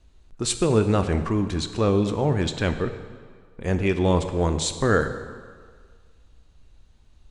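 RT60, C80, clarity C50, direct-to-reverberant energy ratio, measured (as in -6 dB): 1.8 s, 11.0 dB, 10.0 dB, 8.0 dB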